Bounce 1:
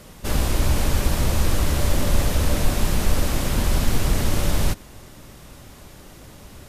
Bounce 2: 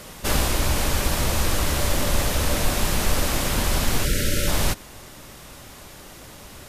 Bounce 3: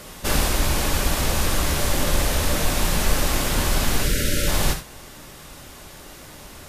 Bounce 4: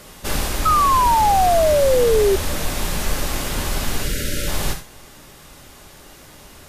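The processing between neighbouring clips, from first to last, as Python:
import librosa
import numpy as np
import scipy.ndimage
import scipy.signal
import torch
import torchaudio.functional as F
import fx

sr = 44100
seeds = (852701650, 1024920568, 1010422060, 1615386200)

y1 = fx.spec_box(x, sr, start_s=4.05, length_s=0.42, low_hz=610.0, high_hz=1300.0, gain_db=-25)
y1 = fx.low_shelf(y1, sr, hz=410.0, db=-7.5)
y1 = fx.rider(y1, sr, range_db=10, speed_s=0.5)
y1 = y1 * librosa.db_to_amplitude(4.0)
y2 = fx.rev_gated(y1, sr, seeds[0], gate_ms=110, shape='flat', drr_db=6.0)
y3 = fx.comb_fb(y2, sr, f0_hz=410.0, decay_s=0.5, harmonics='all', damping=0.0, mix_pct=60)
y3 = fx.spec_paint(y3, sr, seeds[1], shape='fall', start_s=0.65, length_s=1.71, low_hz=380.0, high_hz=1300.0, level_db=-21.0)
y3 = y3 * librosa.db_to_amplitude(5.5)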